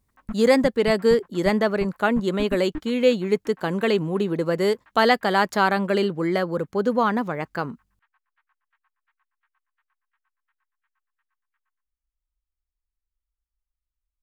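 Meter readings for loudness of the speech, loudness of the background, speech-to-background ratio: -22.0 LUFS, -39.5 LUFS, 17.5 dB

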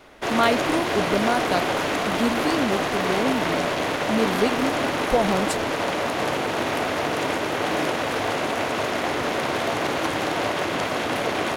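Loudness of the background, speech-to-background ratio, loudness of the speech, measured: -24.0 LUFS, -2.0 dB, -26.0 LUFS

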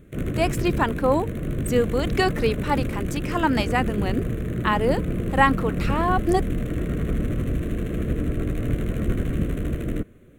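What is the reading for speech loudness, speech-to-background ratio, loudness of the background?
-24.5 LUFS, 3.0 dB, -27.5 LUFS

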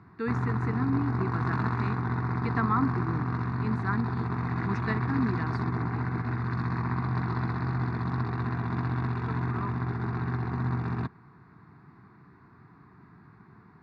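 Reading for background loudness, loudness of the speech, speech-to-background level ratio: -30.5 LUFS, -33.5 LUFS, -3.0 dB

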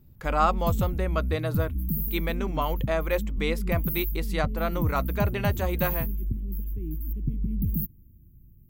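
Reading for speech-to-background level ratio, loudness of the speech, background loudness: 0.5 dB, -30.0 LUFS, -30.5 LUFS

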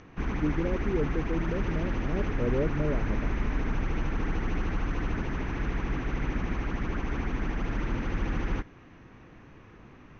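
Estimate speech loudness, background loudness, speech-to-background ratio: -33.0 LUFS, -32.5 LUFS, -0.5 dB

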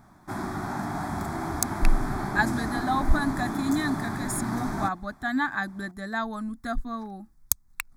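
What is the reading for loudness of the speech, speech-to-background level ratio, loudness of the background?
-30.0 LUFS, 2.0 dB, -32.0 LUFS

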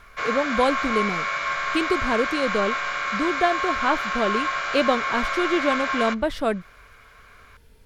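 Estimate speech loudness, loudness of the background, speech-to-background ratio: -25.5 LUFS, -25.5 LUFS, 0.0 dB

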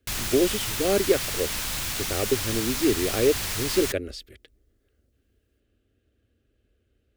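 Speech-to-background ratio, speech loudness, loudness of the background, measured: 1.0 dB, -26.5 LUFS, -27.5 LUFS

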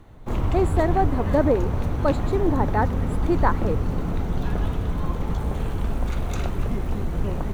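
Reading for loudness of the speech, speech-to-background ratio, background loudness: -25.5 LUFS, 1.5 dB, -27.0 LUFS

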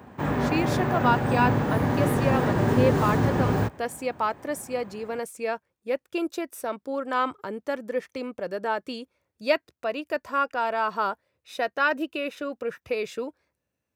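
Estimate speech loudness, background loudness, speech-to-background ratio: -29.0 LUFS, -24.5 LUFS, -4.5 dB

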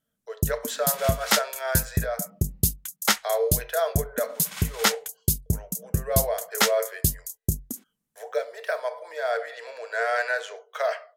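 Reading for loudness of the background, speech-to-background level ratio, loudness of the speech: -26.5 LUFS, -3.0 dB, -29.5 LUFS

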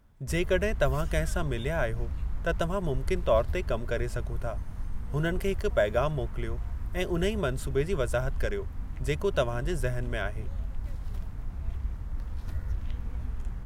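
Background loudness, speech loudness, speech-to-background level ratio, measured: -37.5 LUFS, -31.0 LUFS, 6.5 dB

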